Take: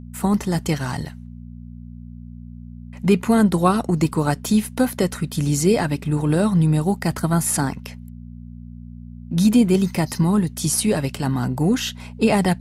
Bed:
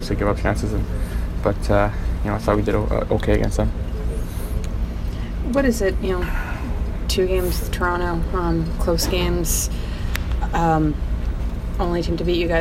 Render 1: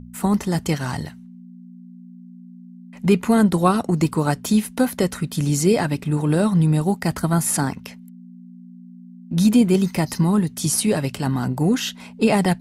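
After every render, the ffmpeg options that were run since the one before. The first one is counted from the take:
-af "bandreject=f=60:t=h:w=4,bandreject=f=120:t=h:w=4"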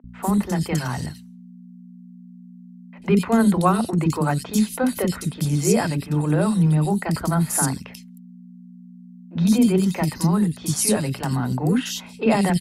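-filter_complex "[0:a]acrossover=split=350|3100[a][b][c];[a]adelay=40[d];[c]adelay=90[e];[d][b][e]amix=inputs=3:normalize=0"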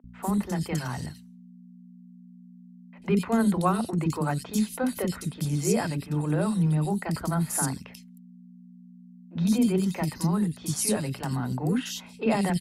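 -af "volume=-6dB"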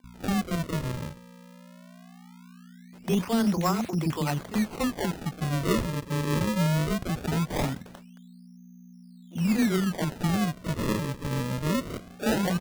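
-af "acrusher=samples=34:mix=1:aa=0.000001:lfo=1:lforange=54.4:lforate=0.2,asoftclip=type=tanh:threshold=-15.5dB"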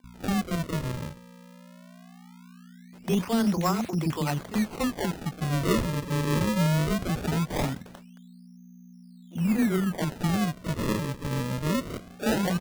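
-filter_complex "[0:a]asettb=1/sr,asplit=3[a][b][c];[a]atrim=end=5.494[d];[b]atrim=start=5.49:end=7.31,asetpts=PTS-STARTPTS,afade=t=in:d=0.004:c=qsin,afade=t=out:st=1.816:d=0.004:c=qsin,aeval=exprs='val(0)+0.5*0.0158*sgn(val(0))':c=same[e];[c]atrim=start=7.306[f];[d][e]acrossfade=d=0.004:c1=hsin:c2=qsin[g];[g][f]acrossfade=d=0.004:c1=qsin:c2=hsin,asettb=1/sr,asplit=3[h][i][j];[h]atrim=end=9.364[k];[i]atrim=start=9.36:end=9.98,asetpts=PTS-STARTPTS,afade=t=in:d=0.004:c=qsin,afade=t=out:st=0.616:d=0.004:c=qsin,equalizer=f=4.7k:t=o:w=1.3:g=-8.5[l];[j]atrim=start=9.976[m];[k][l]acrossfade=d=0.004:c1=hsin:c2=qsin[n];[n][m]acrossfade=d=0.004:c1=qsin:c2=hsin"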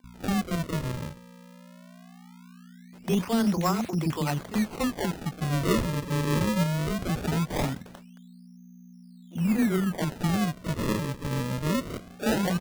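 -filter_complex "[0:a]asettb=1/sr,asplit=3[a][b][c];[a]atrim=end=6.634[d];[b]atrim=start=6.63:end=7.07,asetpts=PTS-STARTPTS,afade=t=in:d=0.004:c=qsin,afade=t=out:st=0.436:d=0.004:c=qsin,acompressor=threshold=-25dB:ratio=6:attack=3.2:release=140:knee=1:detection=peak[e];[c]atrim=start=7.066[f];[d][e]acrossfade=d=0.004:c1=hsin:c2=qsin[g];[g][f]acrossfade=d=0.004:c1=qsin:c2=hsin"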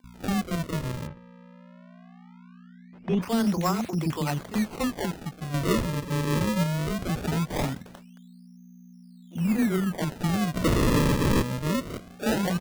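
-filter_complex "[0:a]asplit=3[a][b][c];[a]afade=t=out:st=1.06:d=0.02[d];[b]lowpass=2.3k,afade=t=in:st=1.06:d=0.02,afade=t=out:st=3.21:d=0.02[e];[c]afade=t=in:st=3.21:d=0.02[f];[d][e][f]amix=inputs=3:normalize=0,asplit=3[g][h][i];[g]afade=t=out:st=10.54:d=0.02[j];[h]aeval=exprs='0.126*sin(PI/2*5.62*val(0)/0.126)':c=same,afade=t=in:st=10.54:d=0.02,afade=t=out:st=11.41:d=0.02[k];[i]afade=t=in:st=11.41:d=0.02[l];[j][k][l]amix=inputs=3:normalize=0,asplit=2[m][n];[m]atrim=end=5.54,asetpts=PTS-STARTPTS,afade=t=out:st=4.97:d=0.57:silence=0.446684[o];[n]atrim=start=5.54,asetpts=PTS-STARTPTS,afade=t=in:d=0.004:c=hsin:silence=0.446684[p];[o][p]concat=n=2:v=0:a=1"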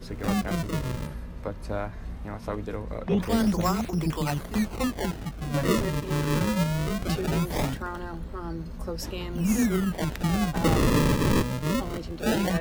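-filter_complex "[1:a]volume=-14dB[a];[0:a][a]amix=inputs=2:normalize=0"

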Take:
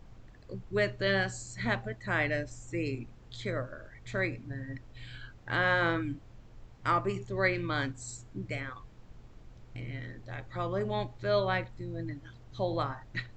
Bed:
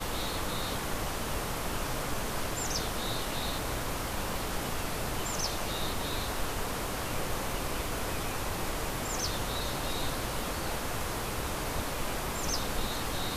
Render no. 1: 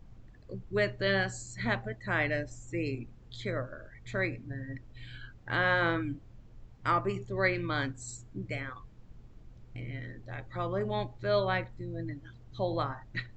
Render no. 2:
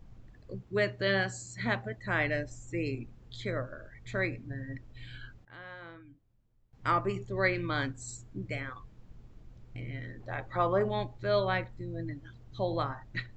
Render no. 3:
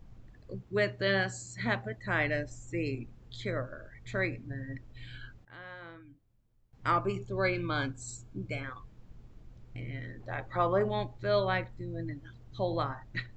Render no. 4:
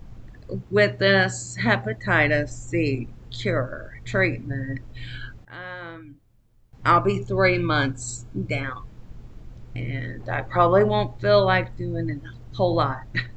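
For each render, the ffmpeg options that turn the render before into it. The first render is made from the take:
-af "afftdn=nr=6:nf=-54"
-filter_complex "[0:a]asettb=1/sr,asplit=3[a][b][c];[a]atrim=end=0.594[d];[b]atrim=start=0.59:end=1.97,asetpts=PTS-STARTPTS,afade=t=in:d=0.004:c=qsin,afade=t=out:st=1.376:d=0.004:c=qsin,highpass=80[e];[c]atrim=start=1.966[f];[d][e]acrossfade=d=0.004:c1=hsin:c2=qsin[g];[g][f]acrossfade=d=0.004:c1=qsin:c2=hsin,asettb=1/sr,asplit=3[h][i][j];[h]atrim=end=10.204[k];[i]atrim=start=10.2:end=10.89,asetpts=PTS-STARTPTS,afade=t=in:d=0.004:c=qsin,afade=t=out:st=0.686:d=0.004:c=qsin,equalizer=f=890:w=0.58:g=8.5[l];[j]atrim=start=10.886[m];[k][l]acrossfade=d=0.004:c1=hsin:c2=qsin[n];[n][m]acrossfade=d=0.004:c1=qsin:c2=hsin,asplit=3[o][p][q];[o]atrim=end=5.45,asetpts=PTS-STARTPTS,afade=t=out:st=5.27:d=0.18:c=log:silence=0.105925[r];[p]atrim=start=5.45:end=6.73,asetpts=PTS-STARTPTS,volume=-19.5dB[s];[q]atrim=start=6.73,asetpts=PTS-STARTPTS,afade=t=in:d=0.18:c=log:silence=0.105925[t];[r][s][t]concat=n=3:v=0:a=1"
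-filter_complex "[0:a]asettb=1/sr,asplit=3[a][b][c];[a]atrim=end=6.964[d];[b]atrim=start=6.96:end=8.64,asetpts=PTS-STARTPTS,afade=t=in:d=0.004:c=qsin,afade=t=out:st=1.676:d=0.004:c=qsin,asuperstop=centerf=1900:order=12:qfactor=6.1[e];[c]atrim=start=8.636[f];[d][e]acrossfade=d=0.004:c1=hsin:c2=qsin[g];[g][f]acrossfade=d=0.004:c1=qsin:c2=hsin"
-af "volume=10.5dB"

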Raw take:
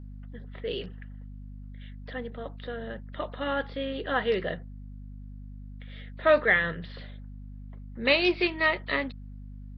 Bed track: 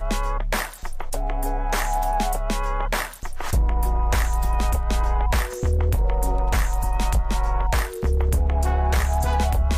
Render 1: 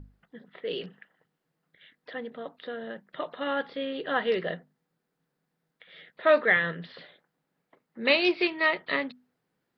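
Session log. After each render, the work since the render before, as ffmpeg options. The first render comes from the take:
-af "bandreject=f=50:t=h:w=6,bandreject=f=100:t=h:w=6,bandreject=f=150:t=h:w=6,bandreject=f=200:t=h:w=6,bandreject=f=250:t=h:w=6"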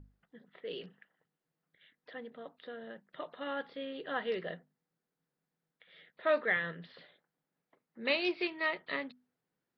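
-af "volume=-8.5dB"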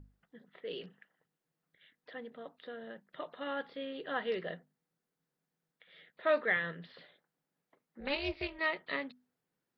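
-filter_complex "[0:a]asettb=1/sr,asplit=3[a][b][c];[a]atrim=end=8.004[d];[b]atrim=start=8:end=8.59,asetpts=PTS-STARTPTS,afade=t=in:d=0.004:c=qsin,afade=t=out:st=0.586:d=0.004:c=qsin,tremolo=f=280:d=0.889[e];[c]atrim=start=8.586[f];[d][e]acrossfade=d=0.004:c1=hsin:c2=qsin[g];[g][f]acrossfade=d=0.004:c1=qsin:c2=hsin"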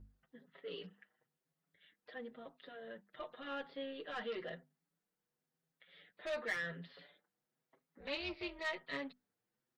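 -filter_complex "[0:a]acrossover=split=2300[a][b];[a]asoftclip=type=tanh:threshold=-35.5dB[c];[c][b]amix=inputs=2:normalize=0,asplit=2[d][e];[e]adelay=6.2,afreqshift=0.95[f];[d][f]amix=inputs=2:normalize=1"

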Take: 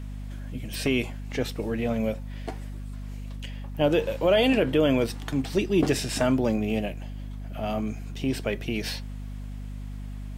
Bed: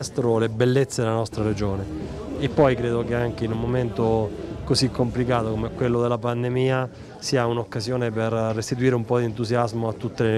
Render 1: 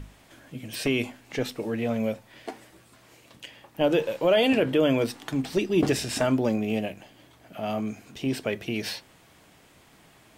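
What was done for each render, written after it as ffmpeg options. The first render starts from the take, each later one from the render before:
-af "bandreject=f=50:t=h:w=6,bandreject=f=100:t=h:w=6,bandreject=f=150:t=h:w=6,bandreject=f=200:t=h:w=6,bandreject=f=250:t=h:w=6"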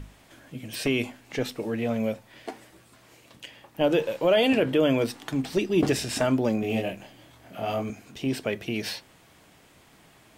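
-filter_complex "[0:a]asettb=1/sr,asplit=3[a][b][c];[a]atrim=end=6.604[d];[b]atrim=start=6.6:end=7.9,asetpts=PTS-STARTPTS,afade=t=in:d=0.004:c=qsin,afade=t=out:st=1.296:d=0.004:c=qsin,asplit=2[e][f];[f]adelay=26,volume=-2dB[g];[e][g]amix=inputs=2:normalize=0,atrim=end_sample=57330[h];[c]atrim=start=7.896[i];[d][h]acrossfade=d=0.004:c1=hsin:c2=qsin[j];[j][i]acrossfade=d=0.004:c1=qsin:c2=hsin"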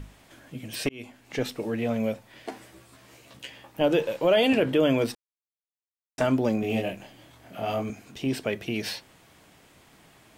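-filter_complex "[0:a]asettb=1/sr,asplit=3[a][b][c];[a]atrim=end=2.504[d];[b]atrim=start=2.5:end=3.81,asetpts=PTS-STARTPTS,afade=t=in:d=0.004:c=qsin,afade=t=out:st=1.306:d=0.004:c=qsin,asplit=2[e][f];[f]adelay=15,volume=-2.5dB[g];[e][g]amix=inputs=2:normalize=0,atrim=end_sample=57771[h];[c]atrim=start=3.806[i];[d][h]acrossfade=d=0.004:c1=hsin:c2=qsin[j];[j][i]acrossfade=d=0.004:c1=qsin:c2=hsin,asplit=4[k][l][m][n];[k]atrim=end=0.89,asetpts=PTS-STARTPTS,afade=t=out:st=0.886:d=0.004:c=hsin[o];[l]atrim=start=0.89:end=5.15,asetpts=PTS-STARTPTS,afade=t=in:d=0.48,afade=t=out:st=4.256:d=0.004:c=hsin[p];[m]atrim=start=5.15:end=6.18,asetpts=PTS-STARTPTS,volume=0[q];[n]atrim=start=6.18,asetpts=PTS-STARTPTS,afade=t=in:d=0.004:c=hsin[r];[o][p][q][r]concat=n=4:v=0:a=1"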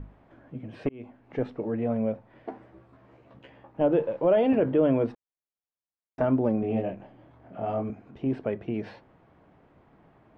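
-af "lowpass=1.1k"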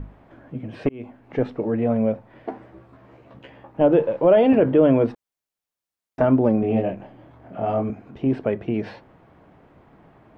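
-af "volume=6.5dB"

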